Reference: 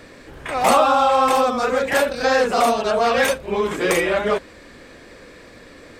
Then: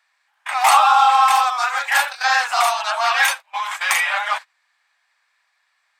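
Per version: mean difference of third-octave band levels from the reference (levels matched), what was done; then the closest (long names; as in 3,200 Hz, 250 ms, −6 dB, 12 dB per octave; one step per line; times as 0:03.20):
12.5 dB: elliptic high-pass filter 800 Hz, stop band 50 dB
noise gate −32 dBFS, range −24 dB
level +5 dB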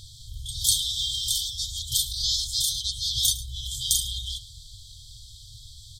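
23.5 dB: brick-wall band-stop 130–3,100 Hz
single-tap delay 106 ms −16.5 dB
level +6.5 dB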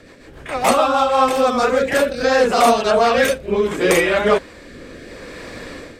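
2.5 dB: automatic gain control gain up to 10 dB
rotating-speaker cabinet horn 7 Hz, later 0.7 Hz, at 0:00.74
level +1 dB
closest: third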